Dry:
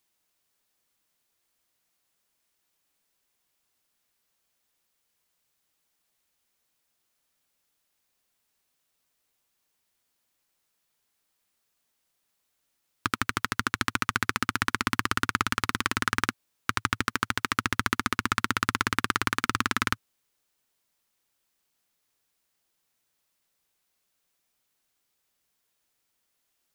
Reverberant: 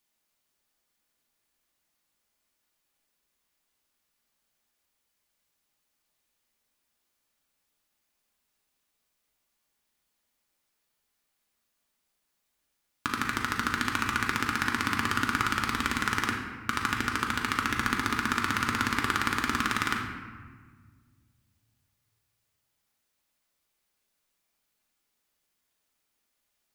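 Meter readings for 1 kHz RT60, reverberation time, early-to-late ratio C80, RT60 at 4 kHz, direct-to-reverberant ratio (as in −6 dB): 1.5 s, 1.5 s, 5.5 dB, 0.95 s, −0.5 dB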